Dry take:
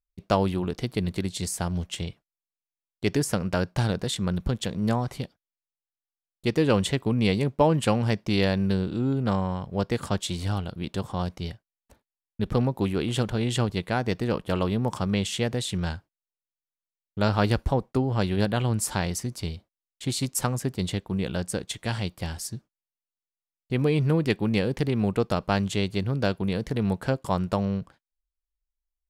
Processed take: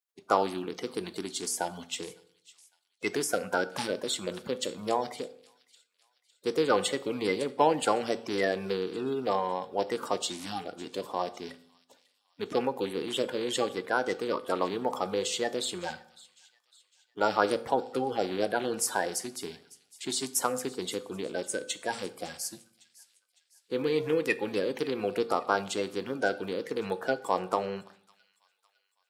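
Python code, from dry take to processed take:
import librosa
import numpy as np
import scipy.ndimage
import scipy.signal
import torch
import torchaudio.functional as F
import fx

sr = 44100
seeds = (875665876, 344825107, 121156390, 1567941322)

y = fx.spec_quant(x, sr, step_db=30)
y = scipy.signal.sosfilt(scipy.signal.butter(2, 410.0, 'highpass', fs=sr, output='sos'), y)
y = fx.echo_wet_highpass(y, sr, ms=556, feedback_pct=47, hz=2500.0, wet_db=-19.5)
y = fx.rev_fdn(y, sr, rt60_s=0.62, lf_ratio=1.3, hf_ratio=0.8, size_ms=12.0, drr_db=11.5)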